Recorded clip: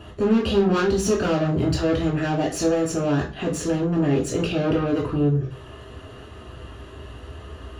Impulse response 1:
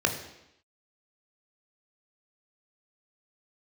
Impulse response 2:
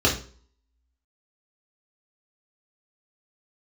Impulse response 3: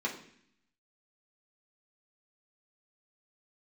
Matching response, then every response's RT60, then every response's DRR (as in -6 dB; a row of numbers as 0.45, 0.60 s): 2; 0.85, 0.45, 0.65 s; 3.5, -4.0, -3.5 dB